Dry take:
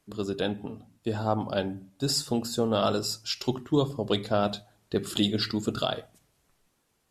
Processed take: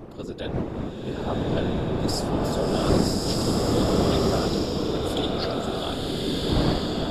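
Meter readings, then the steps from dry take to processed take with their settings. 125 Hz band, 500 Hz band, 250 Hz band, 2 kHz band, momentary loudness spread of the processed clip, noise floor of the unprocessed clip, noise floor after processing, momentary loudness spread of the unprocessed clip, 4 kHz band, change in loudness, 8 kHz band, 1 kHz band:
+7.5 dB, +4.5 dB, +5.5 dB, +3.5 dB, 9 LU, -73 dBFS, -35 dBFS, 8 LU, +1.5 dB, +4.0 dB, +1.5 dB, +3.5 dB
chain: wind noise 350 Hz -27 dBFS; whisperiser; bloom reverb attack 1.29 s, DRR -4.5 dB; gain -4 dB

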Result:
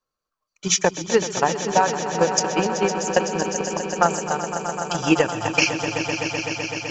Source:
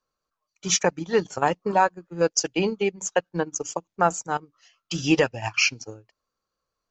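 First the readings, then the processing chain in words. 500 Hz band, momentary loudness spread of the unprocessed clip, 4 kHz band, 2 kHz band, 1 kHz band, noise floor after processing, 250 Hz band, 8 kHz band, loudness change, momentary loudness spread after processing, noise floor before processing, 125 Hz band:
+3.5 dB, 9 LU, +3.5 dB, +3.5 dB, +3.5 dB, -84 dBFS, +3.5 dB, +3.5 dB, +2.5 dB, 6 LU, -85 dBFS, +3.5 dB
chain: swelling echo 0.127 s, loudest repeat 5, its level -9.5 dB; transient shaper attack +8 dB, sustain +4 dB; gain -2.5 dB

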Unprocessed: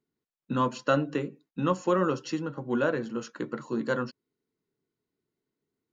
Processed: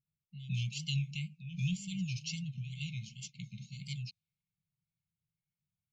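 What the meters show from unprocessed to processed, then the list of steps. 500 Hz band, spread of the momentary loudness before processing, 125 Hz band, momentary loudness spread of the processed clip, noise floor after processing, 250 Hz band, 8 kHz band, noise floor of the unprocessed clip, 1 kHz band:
under -40 dB, 10 LU, +0.5 dB, 11 LU, under -85 dBFS, -12.0 dB, n/a, under -85 dBFS, under -40 dB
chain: reverse echo 0.171 s -12 dB; low-pass opened by the level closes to 1800 Hz, open at -26.5 dBFS; wow and flutter 120 cents; brick-wall FIR band-stop 190–2100 Hz; gain +1 dB

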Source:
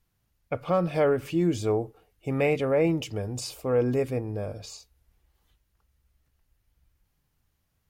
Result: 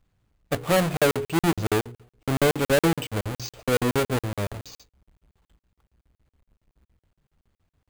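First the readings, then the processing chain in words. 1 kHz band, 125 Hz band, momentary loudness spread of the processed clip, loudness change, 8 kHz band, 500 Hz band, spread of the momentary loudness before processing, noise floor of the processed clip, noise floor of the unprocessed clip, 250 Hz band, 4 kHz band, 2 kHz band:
+5.5 dB, +3.0 dB, 12 LU, +2.0 dB, +8.0 dB, +0.5 dB, 14 LU, under -85 dBFS, -75 dBFS, +2.0 dB, +9.0 dB, +8.0 dB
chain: half-waves squared off; careless resampling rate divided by 4×, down filtered, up hold; de-hum 59.67 Hz, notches 8; crackling interface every 0.14 s, samples 2048, zero, from 0.97

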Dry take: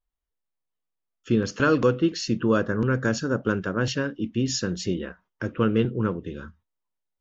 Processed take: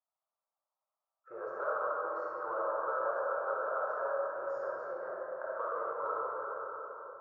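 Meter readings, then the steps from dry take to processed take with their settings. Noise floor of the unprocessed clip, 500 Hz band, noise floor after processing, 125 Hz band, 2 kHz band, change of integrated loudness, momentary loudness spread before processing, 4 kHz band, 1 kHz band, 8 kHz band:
-82 dBFS, -8.5 dB, under -85 dBFS, under -40 dB, -11.5 dB, -11.0 dB, 11 LU, under -40 dB, -1.0 dB, n/a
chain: elliptic band-pass 580–1300 Hz, stop band 50 dB; compressor, threshold -39 dBFS, peak gain reduction 15 dB; digital reverb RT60 4.4 s, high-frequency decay 0.4×, pre-delay 0 ms, DRR -7 dB; gain +1 dB

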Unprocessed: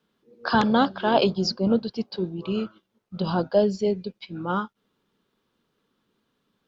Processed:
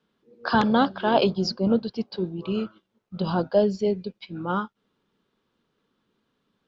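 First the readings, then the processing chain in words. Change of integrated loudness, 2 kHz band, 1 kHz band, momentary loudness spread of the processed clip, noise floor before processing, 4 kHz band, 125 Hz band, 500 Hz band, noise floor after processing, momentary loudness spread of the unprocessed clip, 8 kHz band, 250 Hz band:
0.0 dB, -0.5 dB, 0.0 dB, 14 LU, -75 dBFS, -1.5 dB, 0.0 dB, 0.0 dB, -76 dBFS, 14 LU, n/a, 0.0 dB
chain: air absorption 53 m

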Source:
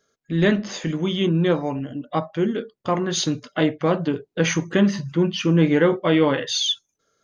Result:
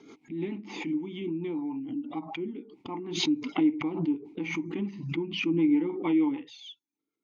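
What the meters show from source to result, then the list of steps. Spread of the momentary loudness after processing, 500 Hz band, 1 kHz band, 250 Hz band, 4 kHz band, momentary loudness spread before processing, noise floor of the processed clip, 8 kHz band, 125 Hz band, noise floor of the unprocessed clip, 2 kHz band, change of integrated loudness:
13 LU, -14.0 dB, -12.5 dB, -6.0 dB, -12.0 dB, 9 LU, under -85 dBFS, n/a, -15.5 dB, -75 dBFS, -11.0 dB, -8.5 dB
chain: rotary speaker horn 6.7 Hz; vowel filter u; backwards sustainer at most 65 dB/s

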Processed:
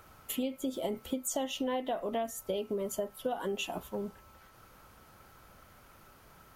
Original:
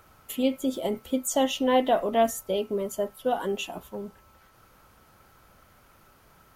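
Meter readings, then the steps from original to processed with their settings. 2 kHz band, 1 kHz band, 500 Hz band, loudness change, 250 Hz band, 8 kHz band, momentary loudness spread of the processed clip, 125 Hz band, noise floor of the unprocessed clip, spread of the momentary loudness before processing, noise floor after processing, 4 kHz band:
-7.5 dB, -10.5 dB, -8.5 dB, -8.5 dB, -8.0 dB, -5.0 dB, 5 LU, -4.5 dB, -58 dBFS, 14 LU, -59 dBFS, -6.5 dB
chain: compressor 12:1, threshold -30 dBFS, peak gain reduction 14 dB

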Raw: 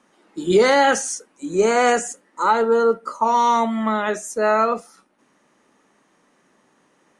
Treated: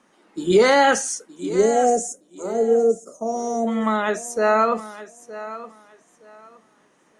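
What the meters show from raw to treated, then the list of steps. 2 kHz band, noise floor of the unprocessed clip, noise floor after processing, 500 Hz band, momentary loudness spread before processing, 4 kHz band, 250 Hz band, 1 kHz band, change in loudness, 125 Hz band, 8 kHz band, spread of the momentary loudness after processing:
-1.5 dB, -62 dBFS, -60 dBFS, 0.0 dB, 12 LU, -1.5 dB, 0.0 dB, -3.5 dB, -1.0 dB, n/a, 0.0 dB, 19 LU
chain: spectral gain 1.56–3.68, 790–5100 Hz -24 dB; on a send: thinning echo 0.918 s, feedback 22%, high-pass 150 Hz, level -15 dB

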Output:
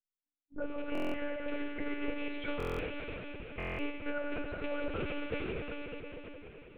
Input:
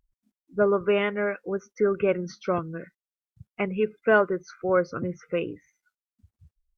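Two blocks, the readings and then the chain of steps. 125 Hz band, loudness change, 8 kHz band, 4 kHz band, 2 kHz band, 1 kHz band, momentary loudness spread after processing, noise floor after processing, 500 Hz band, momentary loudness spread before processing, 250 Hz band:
-9.0 dB, -12.5 dB, n/a, -3.5 dB, -10.0 dB, -13.0 dB, 8 LU, under -85 dBFS, -14.5 dB, 12 LU, -7.5 dB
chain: rattling part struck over -37 dBFS, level -25 dBFS; notches 60/120/180/240/300/360/420/480/540 Hz; expander -47 dBFS; dynamic EQ 1100 Hz, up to -5 dB, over -41 dBFS, Q 1.5; compressor 20:1, threshold -35 dBFS, peak gain reduction 19.5 dB; plate-style reverb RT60 4.8 s, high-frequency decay 0.95×, DRR -3 dB; monotone LPC vocoder at 8 kHz 290 Hz; stuck buffer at 0.93/2.58/3.58, samples 1024, times 8

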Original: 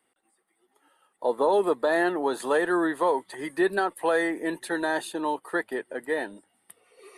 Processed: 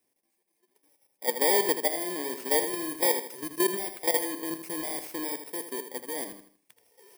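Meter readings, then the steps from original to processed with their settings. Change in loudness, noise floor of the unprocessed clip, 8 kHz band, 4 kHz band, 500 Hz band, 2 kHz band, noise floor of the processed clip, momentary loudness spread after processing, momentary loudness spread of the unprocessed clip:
-1.5 dB, -73 dBFS, +12.0 dB, +5.5 dB, -5.5 dB, -6.5 dB, -77 dBFS, 12 LU, 8 LU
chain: FFT order left unsorted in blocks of 32 samples; level quantiser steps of 11 dB; feedback echo 80 ms, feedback 35%, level -9.5 dB

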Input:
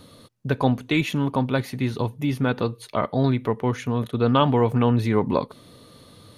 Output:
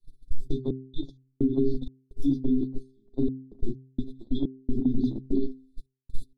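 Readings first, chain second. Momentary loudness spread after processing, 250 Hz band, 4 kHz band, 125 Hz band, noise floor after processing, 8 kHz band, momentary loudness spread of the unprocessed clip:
17 LU, -4.0 dB, under -15 dB, -12.5 dB, -75 dBFS, under -15 dB, 8 LU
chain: LFO high-pass sine 5.6 Hz 210–2400 Hz; air absorption 58 m; added noise brown -40 dBFS; metallic resonator 130 Hz, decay 0.26 s, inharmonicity 0.008; treble ducked by the level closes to 1700 Hz, closed at -24 dBFS; shoebox room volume 130 m³, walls furnished, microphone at 2.8 m; FFT band-reject 400–3300 Hz; gate -24 dBFS, range -33 dB; step gate "xxx.x.xx.xx" 64 bpm -60 dB; high shelf 7800 Hz +8.5 dB; limiter -18 dBFS, peak gain reduction 7 dB; de-hum 131.4 Hz, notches 3; gain +4 dB

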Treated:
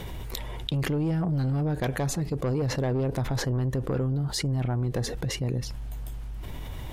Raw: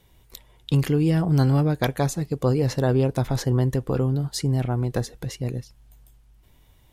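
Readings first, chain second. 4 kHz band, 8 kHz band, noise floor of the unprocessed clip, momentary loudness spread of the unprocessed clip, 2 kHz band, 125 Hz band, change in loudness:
+0.5 dB, -0.5 dB, -57 dBFS, 10 LU, -1.5 dB, -4.5 dB, -5.5 dB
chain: high shelf 3700 Hz -9 dB; soft clip -17.5 dBFS, distortion -13 dB; fast leveller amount 70%; gain -4.5 dB

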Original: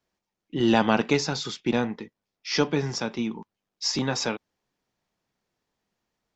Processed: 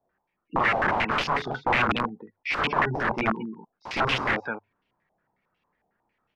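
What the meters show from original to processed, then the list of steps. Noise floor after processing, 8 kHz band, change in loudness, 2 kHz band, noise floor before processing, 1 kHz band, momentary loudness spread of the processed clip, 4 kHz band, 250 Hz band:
-80 dBFS, n/a, +0.5 dB, +7.5 dB, under -85 dBFS, +6.5 dB, 12 LU, -2.5 dB, -6.5 dB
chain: loudspeakers at several distances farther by 11 m -1 dB, 75 m -7 dB; spectral gate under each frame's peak -20 dB strong; notches 50/100 Hz; wrapped overs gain 21 dB; stepped low-pass 11 Hz 740–2800 Hz

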